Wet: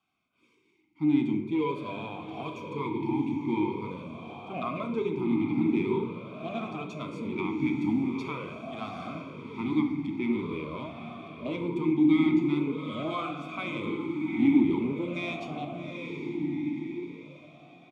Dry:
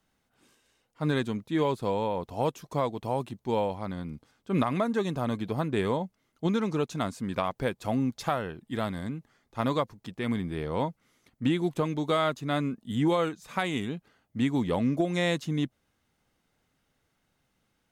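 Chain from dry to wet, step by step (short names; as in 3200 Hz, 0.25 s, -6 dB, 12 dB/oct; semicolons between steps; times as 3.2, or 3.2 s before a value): band shelf 740 Hz -11 dB; notch 1400 Hz, Q 29; comb 0.9 ms, depth 65%; in parallel at -2 dB: limiter -23 dBFS, peak gain reduction 10.5 dB; on the sum: soft clip -18.5 dBFS, distortion -16 dB; diffused feedback echo 0.779 s, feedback 49%, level -5.5 dB; on a send at -5 dB: reverb, pre-delay 12 ms; on the sum: vowel sweep a-u 0.45 Hz; gain +8.5 dB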